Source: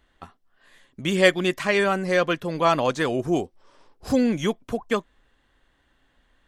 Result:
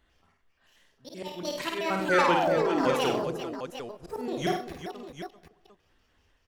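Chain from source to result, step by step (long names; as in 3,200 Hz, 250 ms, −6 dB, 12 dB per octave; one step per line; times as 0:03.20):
pitch shifter gated in a rhythm +8.5 semitones, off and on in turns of 95 ms
dynamic equaliser 440 Hz, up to +4 dB, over −34 dBFS, Q 3.1
volume swells 278 ms
sound drawn into the spectrogram fall, 0:02.08–0:02.84, 250–1,600 Hz −24 dBFS
sample-and-hold tremolo 1.9 Hz
multi-tap delay 52/95/132/393/753 ms −3.5/−8.5/−16/−10/−10 dB
on a send at −21.5 dB: convolution reverb RT60 1.2 s, pre-delay 100 ms
on the sum: level −4 dB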